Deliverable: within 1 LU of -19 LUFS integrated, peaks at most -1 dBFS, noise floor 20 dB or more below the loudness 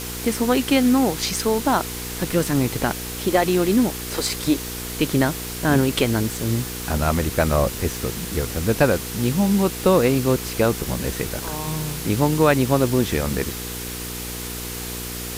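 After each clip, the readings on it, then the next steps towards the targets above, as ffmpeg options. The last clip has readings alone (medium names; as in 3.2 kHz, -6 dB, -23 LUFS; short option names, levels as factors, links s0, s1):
hum 60 Hz; highest harmonic 480 Hz; hum level -32 dBFS; noise floor -31 dBFS; noise floor target -42 dBFS; loudness -21.5 LUFS; peak level -4.5 dBFS; loudness target -19.0 LUFS
-> -af "bandreject=f=60:t=h:w=4,bandreject=f=120:t=h:w=4,bandreject=f=180:t=h:w=4,bandreject=f=240:t=h:w=4,bandreject=f=300:t=h:w=4,bandreject=f=360:t=h:w=4,bandreject=f=420:t=h:w=4,bandreject=f=480:t=h:w=4"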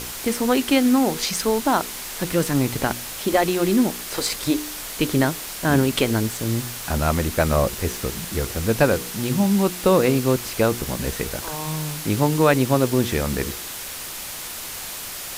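hum not found; noise floor -33 dBFS; noise floor target -42 dBFS
-> -af "afftdn=nr=9:nf=-33"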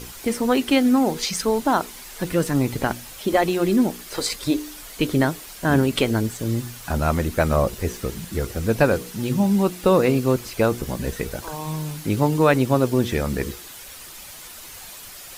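noise floor -40 dBFS; noise floor target -42 dBFS
-> -af "afftdn=nr=6:nf=-40"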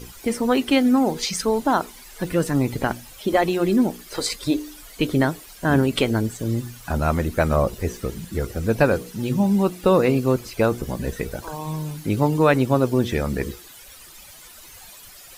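noise floor -44 dBFS; loudness -22.0 LUFS; peak level -5.0 dBFS; loudness target -19.0 LUFS
-> -af "volume=1.41"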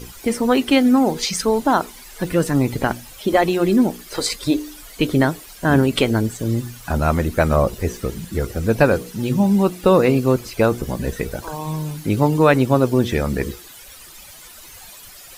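loudness -19.5 LUFS; peak level -2.0 dBFS; noise floor -41 dBFS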